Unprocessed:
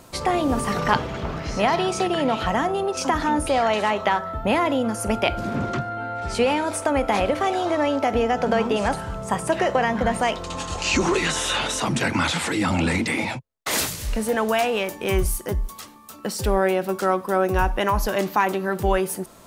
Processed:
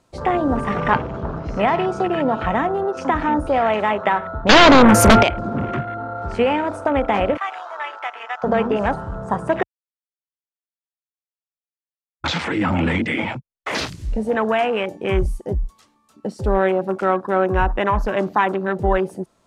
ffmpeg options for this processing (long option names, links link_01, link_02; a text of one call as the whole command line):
ffmpeg -i in.wav -filter_complex "[0:a]asettb=1/sr,asplit=3[link_01][link_02][link_03];[link_01]atrim=end=4.494[link_04];[link_02]atrim=start=4.49:end=5.23,asetpts=PTS-STARTPTS,afade=type=in:duration=0.004:curve=qsin,afade=type=out:start_time=0.736:duration=0.004:curve=qsin,aeval=exprs='0.398*sin(PI/2*4.47*val(0)/0.398)':channel_layout=same[link_05];[link_03]atrim=start=5.226[link_06];[link_04][link_05]acrossfade=duration=0.004:curve1=hsin:curve2=qsin[link_07];[link_07][link_06]acrossfade=duration=0.004:curve1=qsin:curve2=hsin,asettb=1/sr,asplit=3[link_08][link_09][link_10];[link_08]atrim=end=7.374[link_11];[link_09]atrim=start=7.37:end=8.44,asetpts=PTS-STARTPTS,afade=type=in:duration=0.004:curve=qsin,afade=type=out:start_time=1.066:duration=0.004:curve=qsin,highpass=frequency=960:width=0.5412,highpass=frequency=960:width=1.3066[link_12];[link_10]atrim=start=8.436[link_13];[link_11][link_12]acrossfade=duration=0.004:curve1=hsin:curve2=qsin[link_14];[link_14][link_13]acrossfade=duration=0.004:curve1=qsin:curve2=hsin,asplit=3[link_15][link_16][link_17];[link_15]atrim=end=9.63,asetpts=PTS-STARTPTS,afade=type=out:start_time=9.626:duration=0.004:curve=hsin[link_18];[link_16]atrim=start=9.63:end=12.24,asetpts=PTS-STARTPTS,volume=0[link_19];[link_17]atrim=start=12.24,asetpts=PTS-STARTPTS,afade=type=in:duration=0.004:curve=hsin[link_20];[link_18][link_19][link_20]concat=n=3:v=0:a=1,lowpass=8200,afwtdn=0.0355,volume=2.5dB" out.wav